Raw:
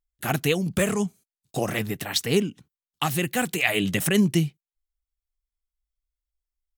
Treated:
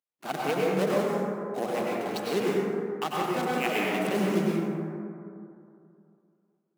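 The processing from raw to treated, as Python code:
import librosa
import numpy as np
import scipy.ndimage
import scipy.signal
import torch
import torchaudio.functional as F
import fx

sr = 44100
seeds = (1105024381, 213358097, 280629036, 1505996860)

y = scipy.ndimage.median_filter(x, 25, mode='constant')
y = scipy.signal.sosfilt(scipy.signal.butter(4, 190.0, 'highpass', fs=sr, output='sos'), y)
y = fx.low_shelf(y, sr, hz=440.0, db=-11.0)
y = fx.rev_plate(y, sr, seeds[0], rt60_s=2.6, hf_ratio=0.3, predelay_ms=85, drr_db=-5.0)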